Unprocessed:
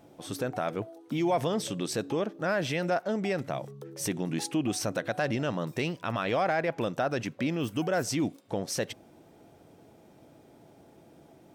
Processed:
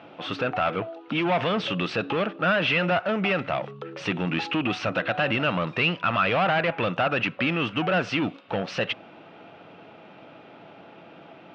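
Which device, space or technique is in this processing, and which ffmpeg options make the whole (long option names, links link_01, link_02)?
overdrive pedal into a guitar cabinet: -filter_complex "[0:a]asplit=2[link_01][link_02];[link_02]highpass=frequency=720:poles=1,volume=19dB,asoftclip=type=tanh:threshold=-17.5dB[link_03];[link_01][link_03]amix=inputs=2:normalize=0,lowpass=frequency=5700:poles=1,volume=-6dB,highpass=82,equalizer=frequency=110:width_type=q:width=4:gain=4,equalizer=frequency=180:width_type=q:width=4:gain=6,equalizer=frequency=380:width_type=q:width=4:gain=-3,equalizer=frequency=1300:width_type=q:width=4:gain=7,equalizer=frequency=2700:width_type=q:width=4:gain=9,lowpass=frequency=3700:width=0.5412,lowpass=frequency=3700:width=1.3066"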